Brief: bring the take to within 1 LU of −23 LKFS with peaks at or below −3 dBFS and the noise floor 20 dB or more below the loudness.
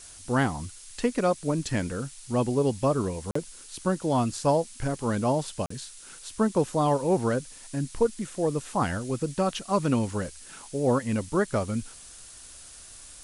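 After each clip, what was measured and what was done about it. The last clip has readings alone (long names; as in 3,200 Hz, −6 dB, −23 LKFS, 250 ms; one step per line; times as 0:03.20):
number of dropouts 2; longest dropout 44 ms; background noise floor −47 dBFS; target noise floor −48 dBFS; integrated loudness −27.5 LKFS; sample peak −11.5 dBFS; target loudness −23.0 LKFS
→ repair the gap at 0:03.31/0:05.66, 44 ms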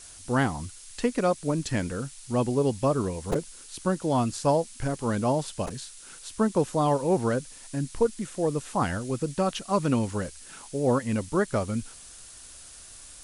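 number of dropouts 0; background noise floor −47 dBFS; target noise floor −48 dBFS
→ broadband denoise 6 dB, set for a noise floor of −47 dBFS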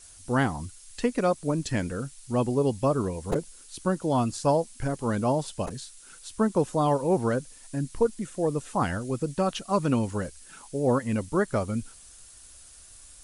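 background noise floor −50 dBFS; integrated loudness −27.5 LKFS; sample peak −11.5 dBFS; target loudness −23.0 LKFS
→ level +4.5 dB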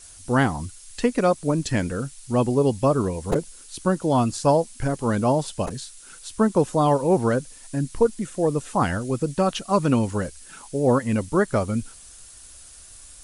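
integrated loudness −23.0 LKFS; sample peak −7.0 dBFS; background noise floor −46 dBFS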